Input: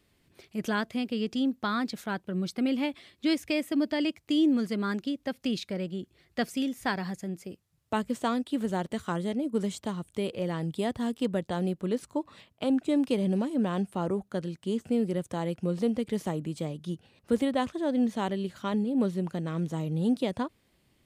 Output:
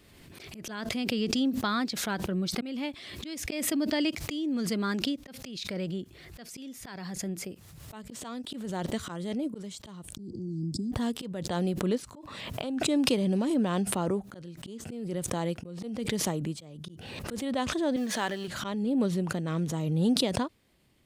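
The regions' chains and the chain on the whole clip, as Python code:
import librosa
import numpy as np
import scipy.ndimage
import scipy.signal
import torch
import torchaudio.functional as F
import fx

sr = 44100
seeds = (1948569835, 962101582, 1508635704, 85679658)

y = fx.chain(x, sr, fx.cheby1_bandstop(low_hz=350.0, high_hz=4900.0, order=5),
    fx.air_absorb(metres=140.0),
    fx.band_squash(depth_pct=70), at=(10.16, 10.92))
y = fx.chain(y, sr, fx.law_mismatch(coded='mu'),
    fx.highpass(hz=500.0, slope=6),
    fx.peak_eq(hz=1700.0, db=11.0, octaves=0.2), at=(17.96, 18.48))
y = fx.dynamic_eq(y, sr, hz=4900.0, q=1.0, threshold_db=-52.0, ratio=4.0, max_db=5)
y = fx.auto_swell(y, sr, attack_ms=408.0)
y = fx.pre_swell(y, sr, db_per_s=30.0)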